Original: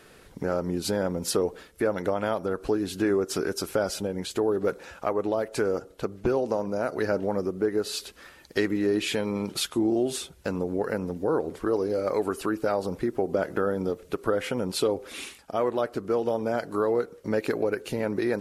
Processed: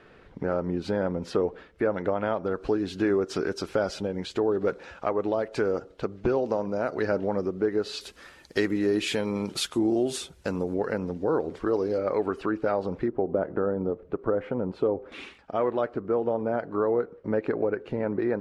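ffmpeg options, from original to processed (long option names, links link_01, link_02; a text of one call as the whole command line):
ffmpeg -i in.wav -af "asetnsamples=nb_out_samples=441:pad=0,asendcmd='2.46 lowpass f 4500;8.01 lowpass f 9500;10.74 lowpass f 5200;11.98 lowpass f 2800;13.08 lowpass f 1100;15.12 lowpass f 2700;15.94 lowpass f 1600',lowpass=2600" out.wav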